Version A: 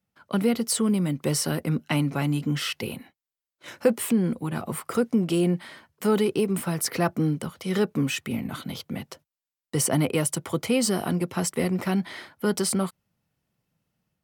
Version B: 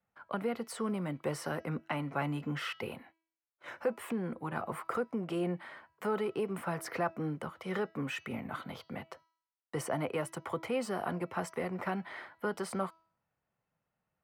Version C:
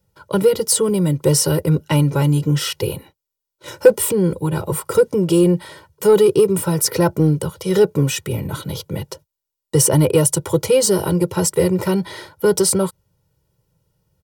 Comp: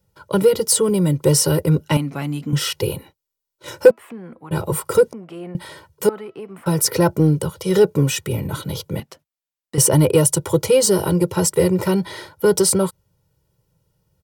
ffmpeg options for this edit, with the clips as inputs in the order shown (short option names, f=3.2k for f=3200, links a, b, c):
-filter_complex "[0:a]asplit=2[a][b];[1:a]asplit=3[c][d][e];[2:a]asplit=6[f][g][h][i][j][k];[f]atrim=end=1.972[l];[a]atrim=start=1.968:end=2.532[m];[g]atrim=start=2.528:end=3.912[n];[c]atrim=start=3.908:end=4.512[o];[h]atrim=start=4.508:end=5.132[p];[d]atrim=start=5.128:end=5.552[q];[i]atrim=start=5.548:end=6.092[r];[e]atrim=start=6.088:end=6.662[s];[j]atrim=start=6.658:end=9.002[t];[b]atrim=start=8.998:end=9.782[u];[k]atrim=start=9.778[v];[l][m]acrossfade=d=0.004:c1=hsin:c2=hsin[w];[w][n]acrossfade=d=0.004:c1=hsin:c2=hsin[x];[x][o]acrossfade=d=0.004:c1=hsin:c2=hsin[y];[y][p]acrossfade=d=0.004:c1=hsin:c2=hsin[z];[z][q]acrossfade=d=0.004:c1=hsin:c2=hsin[aa];[aa][r]acrossfade=d=0.004:c1=hsin:c2=hsin[ab];[ab][s]acrossfade=d=0.004:c1=hsin:c2=hsin[ac];[ac][t]acrossfade=d=0.004:c1=hsin:c2=hsin[ad];[ad][u]acrossfade=d=0.004:c1=hsin:c2=hsin[ae];[ae][v]acrossfade=d=0.004:c1=hsin:c2=hsin"